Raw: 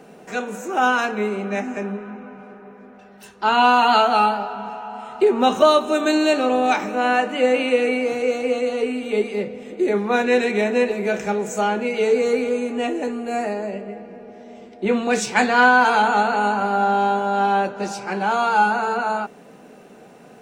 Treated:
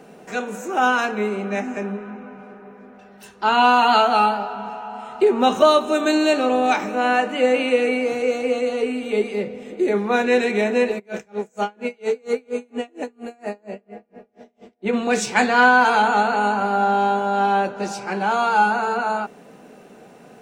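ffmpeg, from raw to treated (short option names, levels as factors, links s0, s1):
-filter_complex "[0:a]asplit=3[s0][s1][s2];[s0]afade=t=out:st=10.98:d=0.02[s3];[s1]aeval=exprs='val(0)*pow(10,-34*(0.5-0.5*cos(2*PI*4.3*n/s))/20)':c=same,afade=t=in:st=10.98:d=0.02,afade=t=out:st=14.92:d=0.02[s4];[s2]afade=t=in:st=14.92:d=0.02[s5];[s3][s4][s5]amix=inputs=3:normalize=0"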